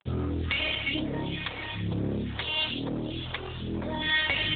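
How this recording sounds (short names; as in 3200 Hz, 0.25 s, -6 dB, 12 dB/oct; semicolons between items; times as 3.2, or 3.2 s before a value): phasing stages 2, 1.1 Hz, lowest notch 190–2900 Hz; a quantiser's noise floor 8-bit, dither none; AMR-NB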